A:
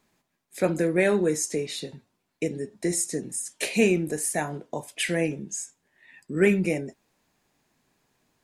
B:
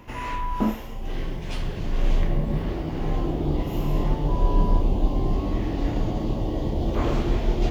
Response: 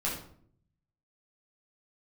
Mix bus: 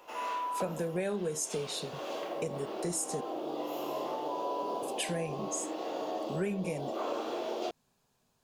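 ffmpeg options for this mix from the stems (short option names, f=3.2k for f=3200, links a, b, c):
-filter_complex "[0:a]equalizer=f=310:t=o:w=0.27:g=-13,volume=-2.5dB,asplit=3[a][b][c];[a]atrim=end=3.21,asetpts=PTS-STARTPTS,afade=t=out:st=3.206:d=0.004:c=hsin[d];[b]atrim=start=3.21:end=4.82,asetpts=PTS-STARTPTS,volume=0[e];[c]atrim=start=4.82,asetpts=PTS-STARTPTS,afade=t=in:d=0.004:c=hsin[f];[d][e][f]concat=n=3:v=0:a=1,asplit=2[g][h];[1:a]highpass=f=410:w=0.5412,highpass=f=410:w=1.3066,volume=-6.5dB,asplit=2[i][j];[j]volume=-3.5dB[k];[h]apad=whole_len=339971[l];[i][l]sidechaincompress=threshold=-34dB:ratio=8:attack=16:release=965[m];[2:a]atrim=start_sample=2205[n];[k][n]afir=irnorm=-1:irlink=0[o];[g][m][o]amix=inputs=3:normalize=0,equalizer=f=2k:w=2.7:g=-10,acompressor=threshold=-30dB:ratio=6"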